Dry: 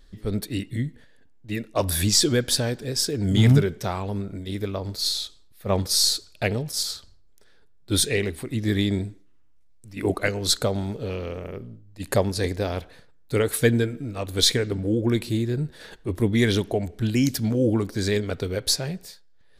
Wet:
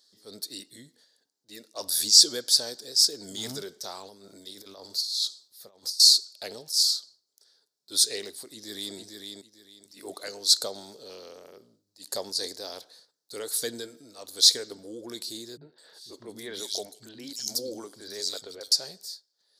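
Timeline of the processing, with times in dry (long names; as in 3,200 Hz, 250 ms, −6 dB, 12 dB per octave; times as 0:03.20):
0:04.02–0:06.00: compressor whose output falls as the input rises −31 dBFS, ratio −0.5
0:08.31–0:08.96: delay throw 450 ms, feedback 25%, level −5 dB
0:15.57–0:18.72: three-band delay without the direct sound lows, mids, highs 40/210 ms, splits 210/3,100 Hz
whole clip: high-pass filter 430 Hz 12 dB per octave; high shelf with overshoot 3,400 Hz +11 dB, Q 3; transient designer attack −4 dB, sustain +2 dB; level −10 dB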